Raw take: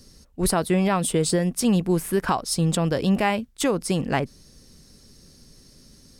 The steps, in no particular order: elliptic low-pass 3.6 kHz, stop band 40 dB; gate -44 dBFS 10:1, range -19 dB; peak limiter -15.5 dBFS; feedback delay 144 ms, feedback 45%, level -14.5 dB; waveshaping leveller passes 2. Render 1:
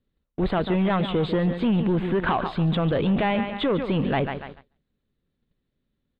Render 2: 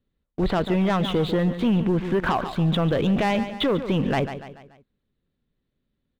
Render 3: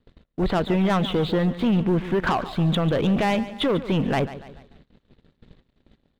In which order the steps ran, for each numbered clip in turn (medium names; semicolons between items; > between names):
feedback delay > gate > waveshaping leveller > peak limiter > elliptic low-pass; elliptic low-pass > gate > waveshaping leveller > feedback delay > peak limiter; elliptic low-pass > peak limiter > waveshaping leveller > feedback delay > gate